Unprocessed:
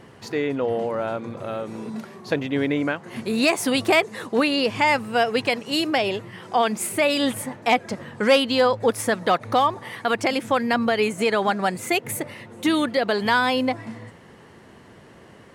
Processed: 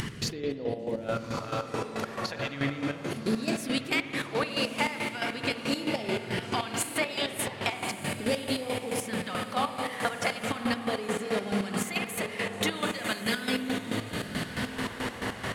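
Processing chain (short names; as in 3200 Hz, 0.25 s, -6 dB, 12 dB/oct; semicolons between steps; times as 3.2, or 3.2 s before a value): upward compressor, threshold -24 dBFS; phaser stages 2, 0.38 Hz, lowest notch 190–1500 Hz; compressor 4:1, threshold -33 dBFS, peak gain reduction 15 dB; 1.06–1.45 spectral gain 480–1500 Hz +7 dB; 13.28–13.73 comb 4.7 ms, depth 57%; diffused feedback echo 1.212 s, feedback 56%, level -6.5 dB; reverb RT60 2.6 s, pre-delay 50 ms, DRR 2.5 dB; chopper 4.6 Hz, depth 65%, duty 40%; gain +4.5 dB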